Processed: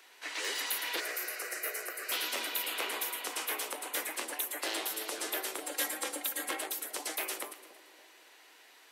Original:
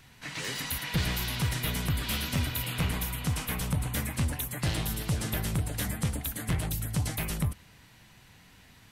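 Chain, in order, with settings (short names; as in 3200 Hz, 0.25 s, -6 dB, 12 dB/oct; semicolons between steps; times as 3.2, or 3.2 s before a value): steep high-pass 330 Hz 48 dB/oct; 1–2.12 fixed phaser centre 930 Hz, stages 6; 5.62–6.62 comb 3.7 ms, depth 71%; split-band echo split 790 Hz, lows 0.281 s, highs 0.114 s, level -14 dB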